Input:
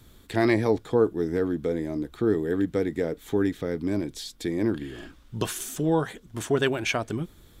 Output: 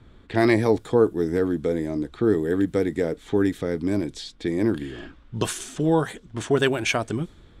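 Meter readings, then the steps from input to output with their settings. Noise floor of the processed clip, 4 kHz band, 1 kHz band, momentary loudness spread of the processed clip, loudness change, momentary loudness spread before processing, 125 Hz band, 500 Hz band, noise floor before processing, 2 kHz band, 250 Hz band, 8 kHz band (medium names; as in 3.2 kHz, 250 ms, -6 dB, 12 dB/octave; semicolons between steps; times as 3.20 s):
-51 dBFS, +3.0 dB, +3.0 dB, 11 LU, +3.0 dB, 11 LU, +3.0 dB, +3.0 dB, -54 dBFS, +3.0 dB, +3.0 dB, +1.5 dB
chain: level-controlled noise filter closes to 2.2 kHz, open at -22.5 dBFS; peaking EQ 8.8 kHz +5 dB 0.54 oct; trim +3 dB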